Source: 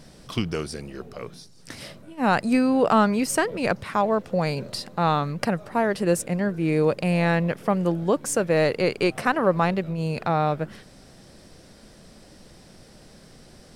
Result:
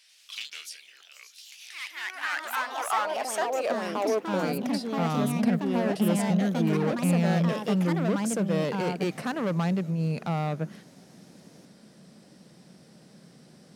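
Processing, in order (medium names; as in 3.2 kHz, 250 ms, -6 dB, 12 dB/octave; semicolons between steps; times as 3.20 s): hard clipper -20 dBFS, distortion -9 dB; high-pass sweep 2.6 kHz -> 170 Hz, 1.70–5.20 s; ever faster or slower copies 90 ms, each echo +3 st, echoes 2; trim -6.5 dB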